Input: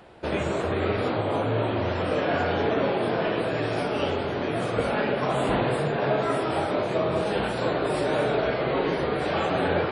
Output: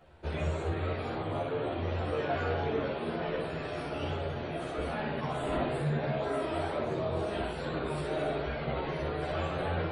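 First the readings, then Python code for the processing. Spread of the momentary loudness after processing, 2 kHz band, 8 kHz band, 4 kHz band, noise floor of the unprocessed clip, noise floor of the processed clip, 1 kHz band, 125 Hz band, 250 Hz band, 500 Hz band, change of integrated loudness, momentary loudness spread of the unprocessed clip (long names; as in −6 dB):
4 LU, −9.0 dB, −9.0 dB, −9.0 dB, −29 dBFS, −37 dBFS, −8.5 dB, −4.0 dB, −8.0 dB, −8.5 dB, −8.0 dB, 3 LU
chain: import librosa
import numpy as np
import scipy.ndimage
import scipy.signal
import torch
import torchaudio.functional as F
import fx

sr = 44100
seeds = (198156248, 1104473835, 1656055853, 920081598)

y = fx.low_shelf(x, sr, hz=75.0, db=10.0)
y = fx.notch(y, sr, hz=5000.0, q=16.0)
y = fx.chorus_voices(y, sr, voices=4, hz=0.56, base_ms=13, depth_ms=1.6, mix_pct=50)
y = fx.room_early_taps(y, sr, ms=(13, 61), db=(-5.0, -5.0))
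y = y * 10.0 ** (-8.0 / 20.0)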